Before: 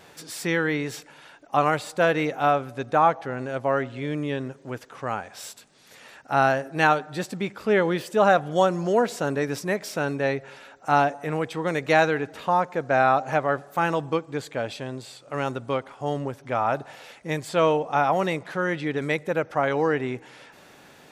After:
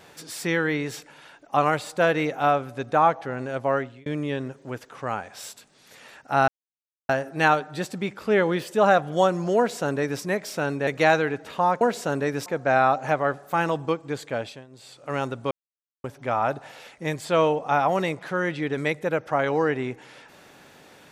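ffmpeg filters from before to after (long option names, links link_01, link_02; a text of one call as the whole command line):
ffmpeg -i in.wav -filter_complex "[0:a]asplit=10[link_01][link_02][link_03][link_04][link_05][link_06][link_07][link_08][link_09][link_10];[link_01]atrim=end=4.06,asetpts=PTS-STARTPTS,afade=type=out:start_time=3.75:duration=0.31[link_11];[link_02]atrim=start=4.06:end=6.48,asetpts=PTS-STARTPTS,afade=type=in:duration=0.004:curve=hsin,afade=type=out:start_time=2.416:duration=0.004:curve=hsin,apad=pad_dur=0.61[link_12];[link_03]atrim=start=6.48:end=10.262,asetpts=PTS-STARTPTS,afade=type=in:duration=0.004:curve=hsin[link_13];[link_04]atrim=start=11.758:end=12.702[link_14];[link_05]atrim=start=8.958:end=9.612[link_15];[link_06]atrim=start=12.698:end=14.9,asetpts=PTS-STARTPTS,afade=type=out:start_time=1.932:duration=0.27:silence=0.141254[link_16];[link_07]atrim=start=14.9:end=14.94,asetpts=PTS-STARTPTS,volume=-17dB[link_17];[link_08]atrim=start=14.94:end=15.75,asetpts=PTS-STARTPTS,afade=type=in:duration=0.27:silence=0.141254,afade=type=out:start_time=0.806:duration=0.004:curve=hsin[link_18];[link_09]atrim=start=15.75:end=16.28,asetpts=PTS-STARTPTS,volume=0[link_19];[link_10]atrim=start=16.28,asetpts=PTS-STARTPTS,afade=type=in:duration=0.004:curve=hsin[link_20];[link_11][link_12][link_13]concat=n=3:v=0:a=1[link_21];[link_21][link_14]acrossfade=duration=0.004:curve1=hsin:curve2=hsin[link_22];[link_22][link_15]acrossfade=duration=0.004:curve1=hsin:curve2=hsin[link_23];[link_16][link_17][link_18][link_19][link_20]concat=n=5:v=0:a=1[link_24];[link_23][link_24]acrossfade=duration=0.004:curve1=hsin:curve2=hsin" out.wav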